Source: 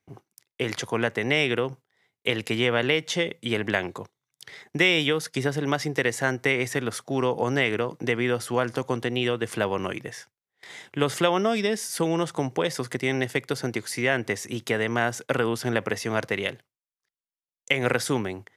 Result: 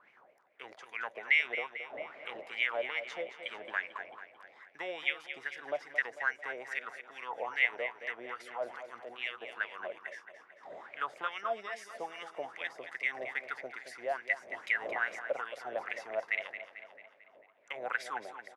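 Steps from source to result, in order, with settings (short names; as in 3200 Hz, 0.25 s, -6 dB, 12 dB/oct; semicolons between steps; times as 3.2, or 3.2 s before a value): wind noise 430 Hz -37 dBFS; tilt +2.5 dB/oct; 8.34–9.18 transient shaper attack -9 dB, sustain +3 dB; wah 2.4 Hz 580–2300 Hz, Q 7; feedback echo 0.222 s, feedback 52%, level -11 dB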